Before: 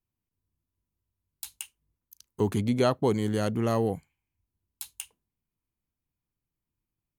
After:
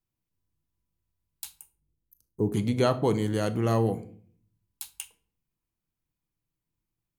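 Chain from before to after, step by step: 1.56–2.54 EQ curve 410 Hz 0 dB, 3300 Hz -29 dB, 12000 Hz -6 dB; shoebox room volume 580 m³, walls furnished, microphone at 0.69 m

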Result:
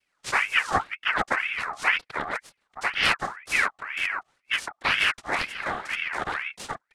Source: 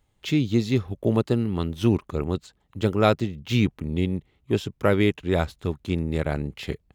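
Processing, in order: 5.37–6.07 wind noise 390 Hz -30 dBFS; noise vocoder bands 4; ring modulator with a swept carrier 1700 Hz, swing 45%, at 2 Hz

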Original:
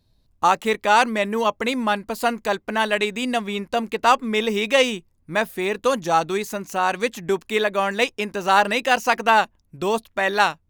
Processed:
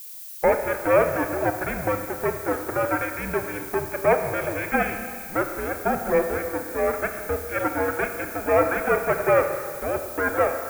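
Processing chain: minimum comb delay 1.1 ms; mistuned SSB -310 Hz 350–2300 Hz; added noise violet -40 dBFS; Schroeder reverb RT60 2.1 s, combs from 26 ms, DRR 6 dB

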